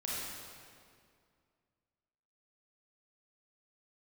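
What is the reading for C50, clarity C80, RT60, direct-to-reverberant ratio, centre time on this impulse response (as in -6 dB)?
-3.5 dB, -1.0 dB, 2.2 s, -6.5 dB, 0.14 s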